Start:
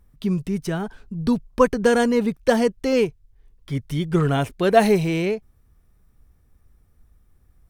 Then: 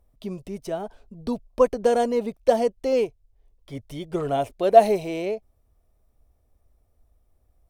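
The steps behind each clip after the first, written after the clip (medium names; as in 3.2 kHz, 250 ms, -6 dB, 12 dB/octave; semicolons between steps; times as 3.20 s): fifteen-band graphic EQ 160 Hz -9 dB, 630 Hz +12 dB, 1.6 kHz -7 dB; trim -6.5 dB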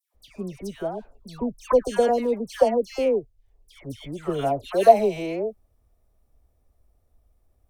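phase dispersion lows, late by 146 ms, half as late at 1.6 kHz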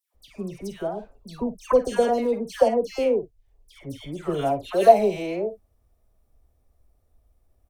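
early reflections 47 ms -12.5 dB, 58 ms -18 dB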